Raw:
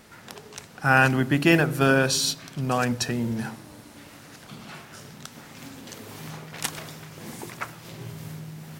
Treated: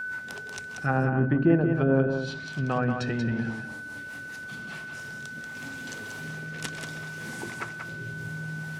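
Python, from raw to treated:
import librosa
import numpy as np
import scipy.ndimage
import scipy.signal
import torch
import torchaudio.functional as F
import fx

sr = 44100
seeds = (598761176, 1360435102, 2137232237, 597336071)

y = fx.rotary_switch(x, sr, hz=5.0, then_hz=0.7, switch_at_s=4.54)
y = fx.env_lowpass_down(y, sr, base_hz=690.0, full_db=-19.5)
y = y + 10.0 ** (-31.0 / 20.0) * np.sin(2.0 * np.pi * 1500.0 * np.arange(len(y)) / sr)
y = y + 10.0 ** (-6.0 / 20.0) * np.pad(y, (int(185 * sr / 1000.0), 0))[:len(y)]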